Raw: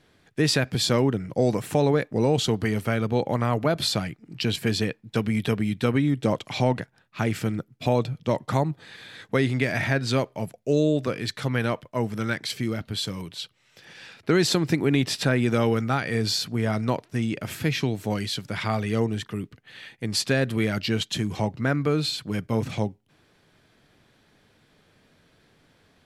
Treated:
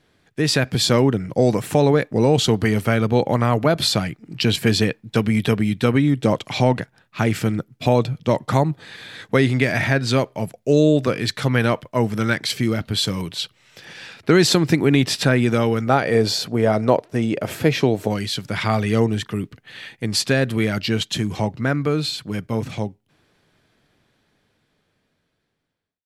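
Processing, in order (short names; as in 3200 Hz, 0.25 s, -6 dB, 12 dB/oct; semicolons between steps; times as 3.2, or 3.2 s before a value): ending faded out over 7.84 s; 15.87–18.08 bell 550 Hz +11 dB 1.6 oct; AGC gain up to 9.5 dB; gain -1 dB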